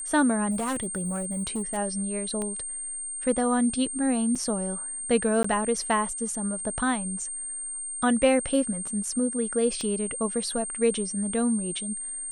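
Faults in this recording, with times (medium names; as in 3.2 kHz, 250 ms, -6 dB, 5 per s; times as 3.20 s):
whine 8.7 kHz -32 dBFS
0.50–1.78 s: clipped -25 dBFS
2.42 s: pop -20 dBFS
4.35–4.36 s: dropout 5.6 ms
5.43–5.44 s: dropout 14 ms
9.81 s: pop -21 dBFS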